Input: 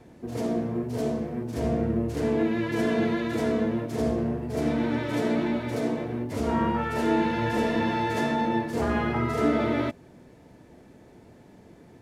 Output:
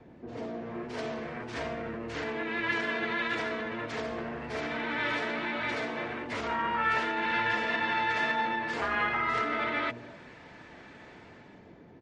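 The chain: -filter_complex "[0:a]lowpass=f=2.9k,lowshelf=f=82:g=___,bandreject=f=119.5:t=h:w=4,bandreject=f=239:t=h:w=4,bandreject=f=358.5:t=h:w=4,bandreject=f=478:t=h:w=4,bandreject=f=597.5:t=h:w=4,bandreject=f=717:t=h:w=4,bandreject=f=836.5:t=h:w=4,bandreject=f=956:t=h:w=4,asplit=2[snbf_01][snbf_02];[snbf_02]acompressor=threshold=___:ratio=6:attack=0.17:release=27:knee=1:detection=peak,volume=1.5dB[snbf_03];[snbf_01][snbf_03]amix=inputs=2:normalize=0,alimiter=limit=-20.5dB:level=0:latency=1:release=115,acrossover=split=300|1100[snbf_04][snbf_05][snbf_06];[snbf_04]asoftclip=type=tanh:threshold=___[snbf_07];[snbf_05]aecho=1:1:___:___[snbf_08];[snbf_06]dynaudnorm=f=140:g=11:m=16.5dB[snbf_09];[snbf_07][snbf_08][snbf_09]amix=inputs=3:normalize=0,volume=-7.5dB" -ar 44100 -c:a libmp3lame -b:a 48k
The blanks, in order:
-4, -39dB, -33.5dB, 259, 0.355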